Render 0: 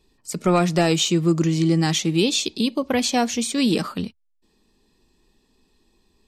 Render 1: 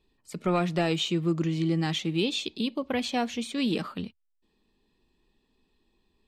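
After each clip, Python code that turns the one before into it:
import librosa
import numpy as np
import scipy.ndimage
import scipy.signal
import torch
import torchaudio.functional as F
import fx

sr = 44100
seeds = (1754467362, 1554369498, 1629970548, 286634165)

y = fx.high_shelf_res(x, sr, hz=4400.0, db=-7.0, q=1.5)
y = F.gain(torch.from_numpy(y), -7.5).numpy()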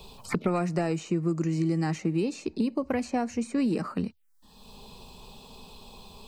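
y = fx.env_phaser(x, sr, low_hz=300.0, high_hz=3400.0, full_db=-32.0)
y = fx.band_squash(y, sr, depth_pct=100)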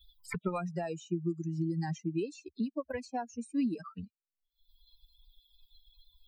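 y = fx.bin_expand(x, sr, power=3.0)
y = F.gain(torch.from_numpy(y), -1.5).numpy()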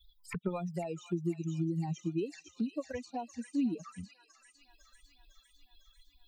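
y = fx.echo_wet_highpass(x, sr, ms=503, feedback_pct=64, hz=2400.0, wet_db=-3.5)
y = fx.env_flanger(y, sr, rest_ms=3.6, full_db=-31.5)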